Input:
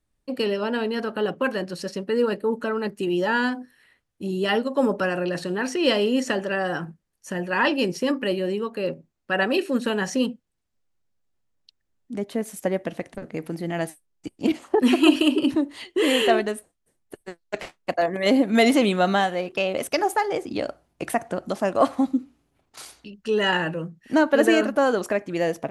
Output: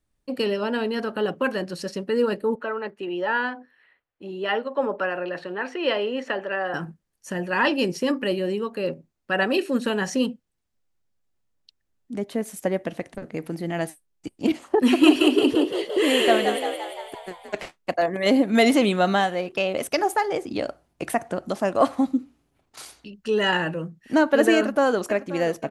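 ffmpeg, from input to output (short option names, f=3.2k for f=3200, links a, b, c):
-filter_complex "[0:a]asettb=1/sr,asplit=3[a][b][c];[a]atrim=end=2.554[d];[b]atrim=start=2.55:end=6.74,asetpts=PTS-STARTPTS,afade=t=in:d=0.004:c=qsin,afade=t=out:st=4.186:d=0.004:c=qsin,acrossover=split=390 3300:gain=0.224 1 0.0794[e][f][g];[e][f][g]amix=inputs=3:normalize=0[h];[c]atrim=start=6.736[i];[d][h]acrossfade=d=0.004:c1=hsin:c2=qsin[j];[j][i]acrossfade=d=0.004:c1=qsin:c2=hsin,asettb=1/sr,asplit=3[k][l][m];[k]atrim=end=14.844[n];[l]atrim=start=14.84:end=17.61,asetpts=PTS-STARTPTS,afade=t=in:d=0.004:c=qsin,afade=t=out:st=2.766:d=0.004:c=qsin,asplit=9[o][p][q][r][s][t][u][v][w];[p]adelay=172,afreqshift=56,volume=-7dB[x];[q]adelay=344,afreqshift=112,volume=-11.4dB[y];[r]adelay=516,afreqshift=168,volume=-15.9dB[z];[s]adelay=688,afreqshift=224,volume=-20.3dB[aa];[t]adelay=860,afreqshift=280,volume=-24.7dB[ab];[u]adelay=1032,afreqshift=336,volume=-29.2dB[ac];[v]adelay=1204,afreqshift=392,volume=-33.6dB[ad];[w]adelay=1376,afreqshift=448,volume=-38.1dB[ae];[o][x][y][z][aa][ab][ac][ad][ae]amix=inputs=9:normalize=0,atrim=end_sample=122157[af];[m]atrim=start=17.606[ag];[n][af]acrossfade=d=0.004:c1=hsin:c2=qsin[ah];[ah][ag]acrossfade=d=0.004:c1=qsin:c2=hsin,asplit=2[ai][aj];[aj]afade=t=in:st=24.56:d=0.01,afade=t=out:st=25.02:d=0.01,aecho=0:1:530|1060|1590|2120|2650|3180|3710:0.16788|0.109122|0.0709295|0.0461042|0.0299677|0.019479|0.0126614[ak];[ai][ak]amix=inputs=2:normalize=0"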